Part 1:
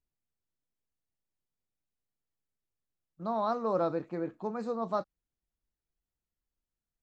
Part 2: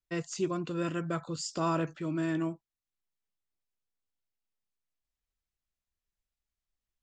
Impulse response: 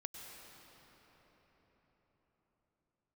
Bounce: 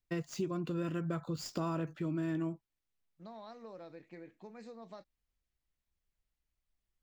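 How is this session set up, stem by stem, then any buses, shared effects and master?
−11.0 dB, 0.00 s, no send, high shelf with overshoot 1,600 Hz +7 dB, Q 3; downward compressor 6 to 1, threshold −35 dBFS, peak gain reduction 10 dB
−1.5 dB, 0.00 s, no send, running median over 5 samples; low-shelf EQ 350 Hz +7 dB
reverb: not used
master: downward compressor 4 to 1, threshold −33 dBFS, peak gain reduction 8.5 dB

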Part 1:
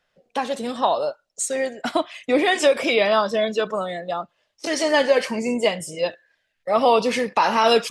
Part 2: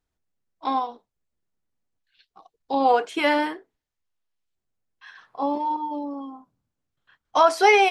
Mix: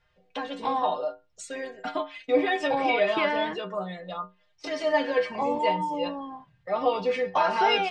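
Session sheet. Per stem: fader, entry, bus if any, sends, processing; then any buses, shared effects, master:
+2.5 dB, 0.00 s, no send, stiff-string resonator 91 Hz, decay 0.3 s, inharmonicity 0.008
+1.5 dB, 0.00 s, no send, low shelf with overshoot 190 Hz +7.5 dB, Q 3; notch filter 1,300 Hz; downward compressor, threshold −25 dBFS, peak gain reduction 12.5 dB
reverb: not used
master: low-pass filter 3,300 Hz 12 dB per octave; one half of a high-frequency compander encoder only

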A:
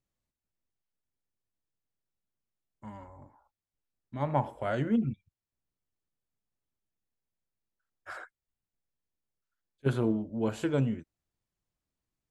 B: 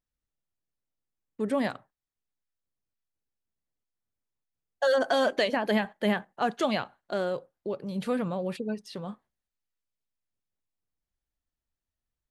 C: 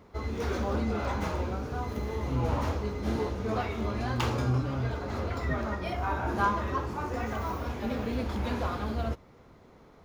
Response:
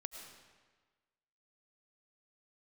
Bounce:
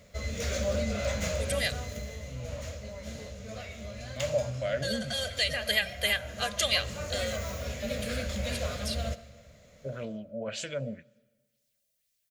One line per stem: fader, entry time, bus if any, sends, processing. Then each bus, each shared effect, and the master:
−1.0 dB, 0.00 s, send −17.5 dB, low-shelf EQ 180 Hz −11.5 dB; auto-filter low-pass sine 2 Hz 580–6,800 Hz; brickwall limiter −24 dBFS, peak gain reduction 10 dB
−4.0 dB, 0.00 s, send −12.5 dB, spectral tilt +3.5 dB per octave; comb filter 2.5 ms, depth 58%; every ending faded ahead of time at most 370 dB per second; automatic ducking −13 dB, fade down 1.00 s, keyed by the first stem
0:01.73 −3 dB → 0:02.32 −12 dB → 0:06.59 −12 dB → 0:06.90 −4 dB, 0.00 s, send −4.5 dB, parametric band 7,100 Hz +10.5 dB 0.37 octaves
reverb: on, RT60 1.4 s, pre-delay 65 ms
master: drawn EQ curve 200 Hz 0 dB, 360 Hz −17 dB, 590 Hz +9 dB, 850 Hz −16 dB, 2,000 Hz +5 dB, 4,200 Hz +7 dB

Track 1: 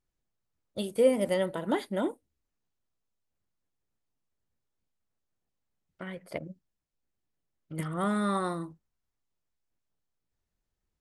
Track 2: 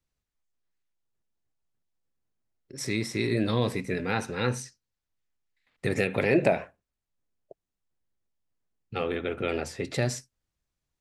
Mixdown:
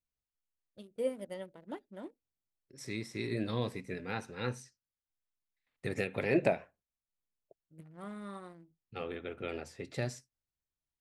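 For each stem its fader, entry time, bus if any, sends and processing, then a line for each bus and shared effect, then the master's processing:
−10.0 dB, 0.00 s, no send, adaptive Wiener filter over 41 samples; expander for the loud parts 1.5 to 1, over −41 dBFS
−5.0 dB, 0.00 s, no send, expander for the loud parts 1.5 to 1, over −34 dBFS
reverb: not used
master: no processing

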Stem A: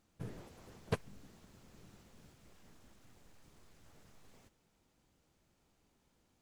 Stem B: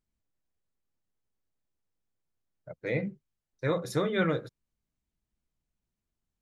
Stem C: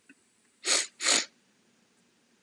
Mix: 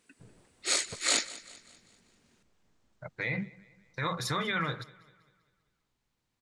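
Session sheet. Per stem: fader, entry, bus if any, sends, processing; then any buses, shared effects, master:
−11.0 dB, 0.00 s, no send, no echo send, Butterworth low-pass 8,500 Hz
−0.5 dB, 0.35 s, no send, echo send −22.5 dB, octave-band graphic EQ 125/250/500/1,000/2,000/4,000/8,000 Hz +5/−3/−7/+11/+7/+9/+3 dB; brickwall limiter −22 dBFS, peak gain reduction 11 dB
−2.5 dB, 0.00 s, no send, echo send −18 dB, no processing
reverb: not used
echo: repeating echo 196 ms, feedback 46%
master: no processing

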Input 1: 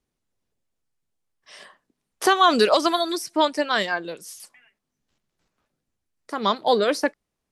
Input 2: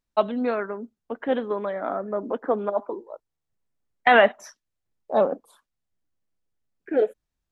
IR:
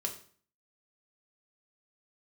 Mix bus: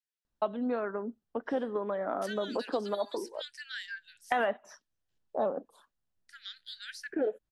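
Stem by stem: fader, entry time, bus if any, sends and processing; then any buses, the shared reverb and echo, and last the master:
−8.0 dB, 0.00 s, no send, Butterworth high-pass 1,500 Hz 96 dB per octave; high-shelf EQ 3,700 Hz −7.5 dB; downward compressor 1.5 to 1, threshold −33 dBFS, peak gain reduction 4 dB
−0.5 dB, 0.25 s, no send, high-shelf EQ 5,200 Hz −11.5 dB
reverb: not used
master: parametric band 2,200 Hz −6.5 dB 0.37 octaves; downward compressor 3 to 1, threshold −30 dBFS, peak gain reduction 13.5 dB

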